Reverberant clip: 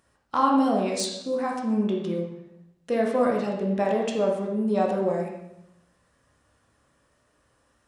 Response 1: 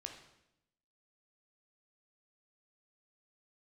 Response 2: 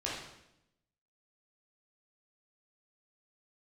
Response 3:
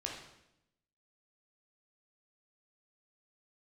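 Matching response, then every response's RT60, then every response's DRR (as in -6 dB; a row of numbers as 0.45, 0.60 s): 3; 0.85, 0.85, 0.85 s; 3.0, -6.5, -1.5 dB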